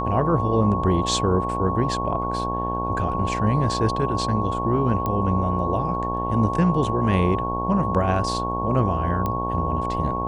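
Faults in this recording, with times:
mains buzz 60 Hz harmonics 19 −28 dBFS
whistle 1,100 Hz −26 dBFS
0:05.06: click −13 dBFS
0:09.26: click −13 dBFS

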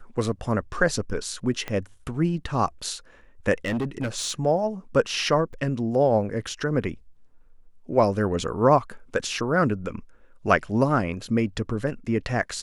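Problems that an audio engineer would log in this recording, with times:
0:01.68: click −16 dBFS
0:03.65–0:04.32: clipping −22.5 dBFS
0:05.53–0:05.54: drop-out 5 ms

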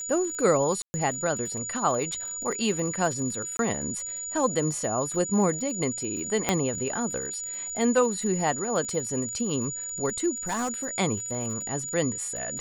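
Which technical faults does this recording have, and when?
surface crackle 42 per second −34 dBFS
whistle 6,900 Hz −32 dBFS
0:00.82–0:00.94: drop-out 120 ms
0:03.57–0:03.59: drop-out 22 ms
0:06.49: click −7 dBFS
0:10.47–0:10.91: clipping −24.5 dBFS

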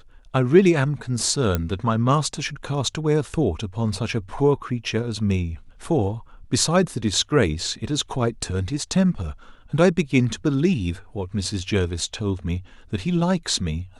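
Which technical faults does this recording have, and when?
0:01.55: click −8 dBFS

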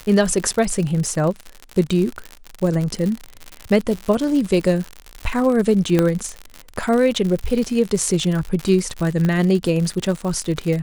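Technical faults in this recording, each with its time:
surface crackle 97 per second −23 dBFS
0:05.99: click −4 dBFS
0:09.25: click −11 dBFS

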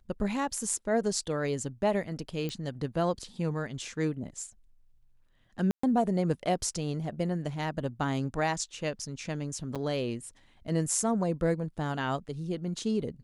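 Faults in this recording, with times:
0:02.49: click −22 dBFS
0:05.71–0:05.83: drop-out 124 ms
0:09.75–0:09.76: drop-out 6.8 ms

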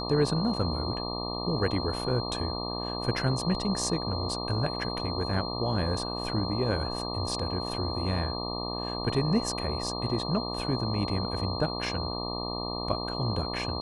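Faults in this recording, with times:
mains buzz 60 Hz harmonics 20 −35 dBFS
whistle 4,200 Hz −36 dBFS

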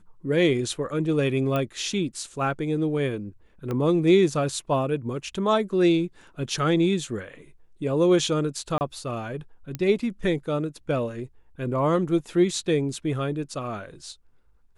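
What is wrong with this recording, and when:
0:01.56: click −15 dBFS
0:03.71: click −18 dBFS
0:08.78–0:08.81: drop-out 29 ms
0:09.75: click −16 dBFS

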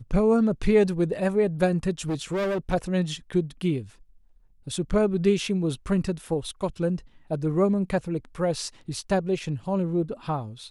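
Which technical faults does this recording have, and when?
0:02.08–0:02.74: clipping −23.5 dBFS

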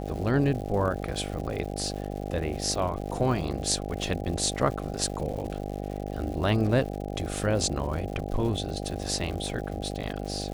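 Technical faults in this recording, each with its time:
mains buzz 50 Hz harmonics 16 −34 dBFS
surface crackle 180 per second −36 dBFS

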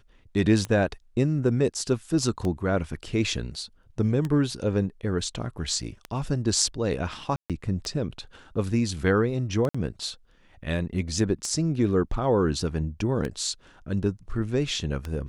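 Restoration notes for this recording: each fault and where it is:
scratch tick 33 1/3 rpm −17 dBFS
0:07.36–0:07.50: drop-out 137 ms
0:09.69–0:09.74: drop-out 55 ms

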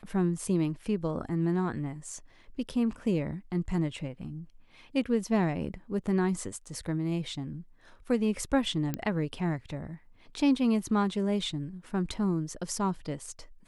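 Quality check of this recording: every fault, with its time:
0:08.94: click −17 dBFS

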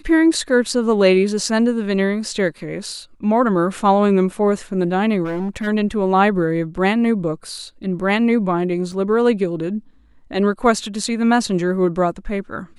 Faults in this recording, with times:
0:05.24–0:05.68: clipping −19.5 dBFS
0:08.92: drop-out 3.1 ms

